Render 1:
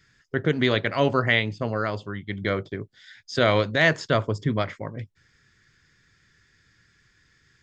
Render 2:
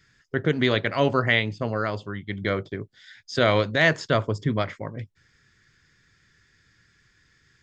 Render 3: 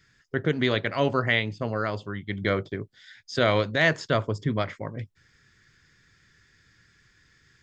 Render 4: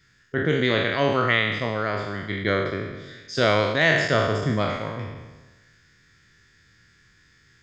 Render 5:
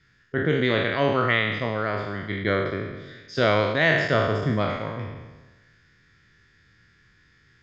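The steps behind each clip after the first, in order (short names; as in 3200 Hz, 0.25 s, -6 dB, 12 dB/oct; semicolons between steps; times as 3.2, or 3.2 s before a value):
nothing audible
vocal rider within 4 dB 2 s; gain -3 dB
spectral trails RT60 1.20 s
air absorption 120 m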